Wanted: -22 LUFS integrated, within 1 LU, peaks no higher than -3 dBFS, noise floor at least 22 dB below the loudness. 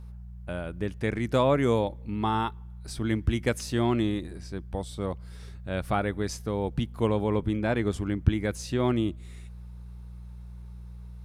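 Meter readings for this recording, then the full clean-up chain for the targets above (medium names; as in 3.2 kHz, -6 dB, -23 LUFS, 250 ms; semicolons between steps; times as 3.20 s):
hum 60 Hz; highest harmonic 180 Hz; hum level -39 dBFS; loudness -28.5 LUFS; peak level -6.5 dBFS; loudness target -22.0 LUFS
-> de-hum 60 Hz, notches 3; trim +6.5 dB; peak limiter -3 dBFS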